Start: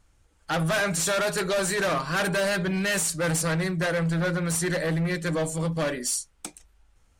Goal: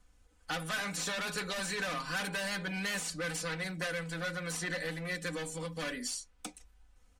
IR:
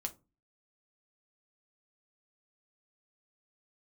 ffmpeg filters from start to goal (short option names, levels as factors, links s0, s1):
-filter_complex "[0:a]aecho=1:1:4:0.72,acrossover=split=250|1500|5800[s0][s1][s2][s3];[s0]acompressor=threshold=0.01:ratio=4[s4];[s1]acompressor=threshold=0.0158:ratio=4[s5];[s2]acompressor=threshold=0.0316:ratio=4[s6];[s3]acompressor=threshold=0.00794:ratio=4[s7];[s4][s5][s6][s7]amix=inputs=4:normalize=0,volume=0.562"